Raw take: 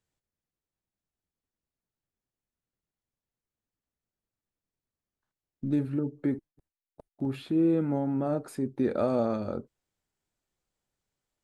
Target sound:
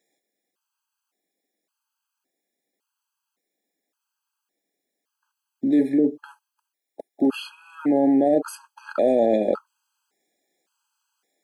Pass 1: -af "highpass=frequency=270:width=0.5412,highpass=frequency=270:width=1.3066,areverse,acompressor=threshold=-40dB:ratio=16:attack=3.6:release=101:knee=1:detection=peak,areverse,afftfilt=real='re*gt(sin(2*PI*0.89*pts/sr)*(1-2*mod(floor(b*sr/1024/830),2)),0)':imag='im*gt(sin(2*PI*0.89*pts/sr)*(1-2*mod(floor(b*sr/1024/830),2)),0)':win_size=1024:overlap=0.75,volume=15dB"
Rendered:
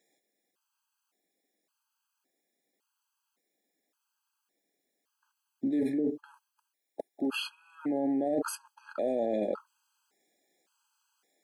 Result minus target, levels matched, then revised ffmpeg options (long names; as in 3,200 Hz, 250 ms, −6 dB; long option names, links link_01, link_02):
downward compressor: peak gain reduction +11 dB
-af "highpass=frequency=270:width=0.5412,highpass=frequency=270:width=1.3066,areverse,acompressor=threshold=-28dB:ratio=16:attack=3.6:release=101:knee=1:detection=peak,areverse,afftfilt=real='re*gt(sin(2*PI*0.89*pts/sr)*(1-2*mod(floor(b*sr/1024/830),2)),0)':imag='im*gt(sin(2*PI*0.89*pts/sr)*(1-2*mod(floor(b*sr/1024/830),2)),0)':win_size=1024:overlap=0.75,volume=15dB"